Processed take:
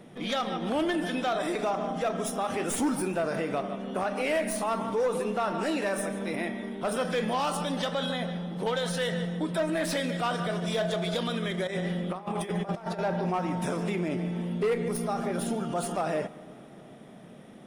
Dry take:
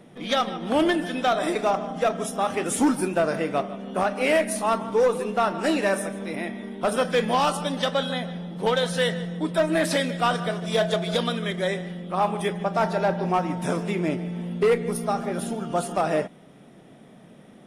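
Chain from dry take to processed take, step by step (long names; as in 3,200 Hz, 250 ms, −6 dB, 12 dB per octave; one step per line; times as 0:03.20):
stylus tracing distortion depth 0.025 ms
0:11.67–0:12.99: compressor whose output falls as the input rises −30 dBFS, ratio −0.5
brickwall limiter −21.5 dBFS, peak gain reduction 7.5 dB
dense smooth reverb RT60 4.6 s, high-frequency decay 0.4×, DRR 18 dB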